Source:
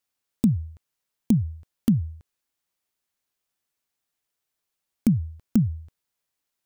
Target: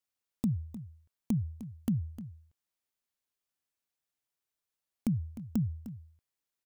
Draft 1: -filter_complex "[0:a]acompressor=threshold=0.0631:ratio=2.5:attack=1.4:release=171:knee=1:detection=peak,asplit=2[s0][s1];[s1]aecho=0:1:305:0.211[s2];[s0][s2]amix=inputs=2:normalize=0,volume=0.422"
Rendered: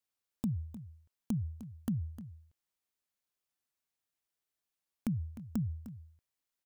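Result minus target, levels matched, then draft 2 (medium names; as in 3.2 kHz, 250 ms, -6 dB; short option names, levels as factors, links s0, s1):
compression: peak gain reduction +4 dB
-filter_complex "[0:a]acompressor=threshold=0.133:ratio=2.5:attack=1.4:release=171:knee=1:detection=peak,asplit=2[s0][s1];[s1]aecho=0:1:305:0.211[s2];[s0][s2]amix=inputs=2:normalize=0,volume=0.422"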